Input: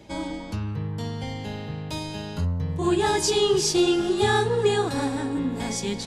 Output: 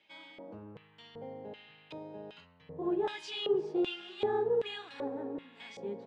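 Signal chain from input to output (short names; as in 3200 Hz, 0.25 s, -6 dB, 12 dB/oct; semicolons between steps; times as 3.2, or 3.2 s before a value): HPF 110 Hz; tone controls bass +3 dB, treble -13 dB; LFO band-pass square 1.3 Hz 510–2900 Hz; gain -3.5 dB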